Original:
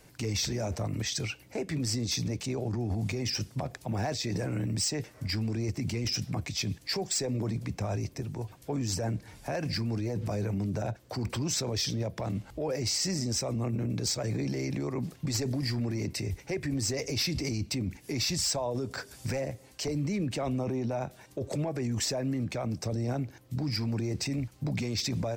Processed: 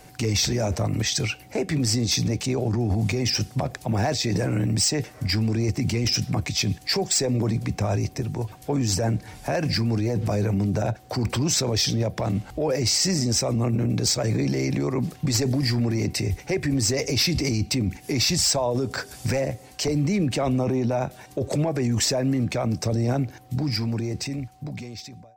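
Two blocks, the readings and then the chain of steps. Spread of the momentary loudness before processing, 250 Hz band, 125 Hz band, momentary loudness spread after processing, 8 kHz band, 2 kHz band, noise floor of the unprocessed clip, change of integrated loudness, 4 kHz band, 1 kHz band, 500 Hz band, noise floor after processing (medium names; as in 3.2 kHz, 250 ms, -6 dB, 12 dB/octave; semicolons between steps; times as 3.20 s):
6 LU, +7.5 dB, +7.5 dB, 7 LU, +8.0 dB, +7.5 dB, -56 dBFS, +8.0 dB, +7.5 dB, +8.0 dB, +8.0 dB, -47 dBFS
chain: fade out at the end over 2.12 s; whistle 750 Hz -61 dBFS; trim +8 dB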